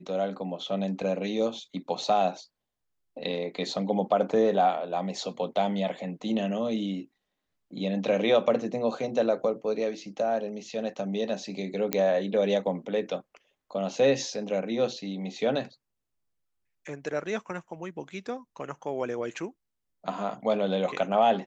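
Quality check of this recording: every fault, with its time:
0:11.93: click −9 dBFS

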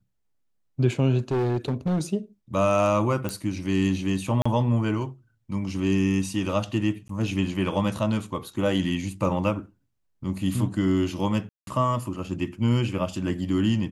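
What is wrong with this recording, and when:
0:01.18–0:02.01: clipping −21 dBFS
0:03.29: click −15 dBFS
0:04.42–0:04.46: drop-out 35 ms
0:07.08–0:07.09: drop-out 13 ms
0:11.49–0:11.67: drop-out 182 ms

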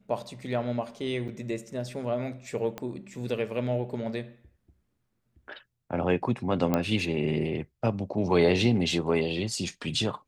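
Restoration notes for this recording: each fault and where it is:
0:01.28–0:01.29: drop-out 5.9 ms
0:02.78: click −20 dBFS
0:06.74: click −12 dBFS

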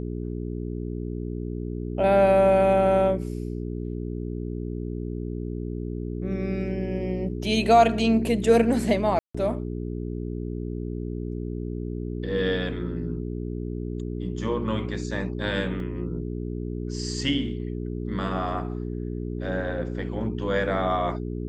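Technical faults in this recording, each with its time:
mains hum 60 Hz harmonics 7 −31 dBFS
0:09.19–0:09.35: drop-out 155 ms
0:15.80: drop-out 2.1 ms

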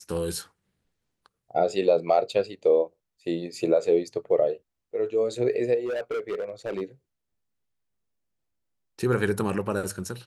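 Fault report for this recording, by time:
0:05.85–0:06.82: clipping −26 dBFS

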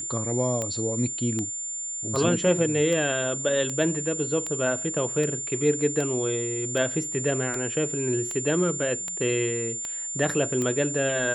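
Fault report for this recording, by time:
scratch tick 78 rpm −16 dBFS
whistle 7,200 Hz −30 dBFS

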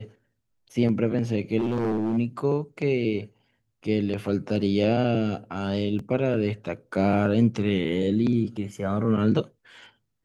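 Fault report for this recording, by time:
0:01.58–0:02.18: clipping −21.5 dBFS
0:05.99: drop-out 3.5 ms

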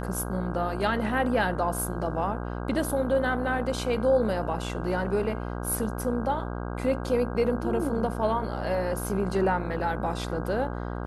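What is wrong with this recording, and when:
mains buzz 60 Hz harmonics 27 −33 dBFS

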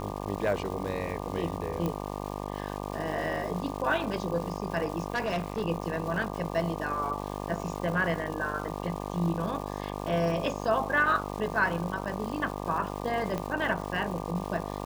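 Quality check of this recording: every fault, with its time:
mains buzz 50 Hz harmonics 24 −36 dBFS
surface crackle 590 per second −38 dBFS
0:01.86: click −18 dBFS
0:05.12–0:05.62: clipping −25.5 dBFS
0:13.38: click −18 dBFS

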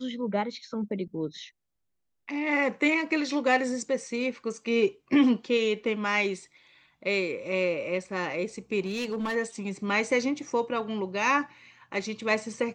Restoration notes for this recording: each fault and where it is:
0:08.85–0:09.36: clipping −26.5 dBFS

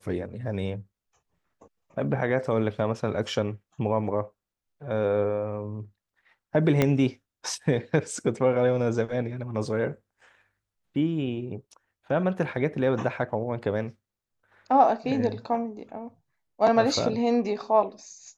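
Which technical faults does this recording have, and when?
0:06.82: click −8 dBFS

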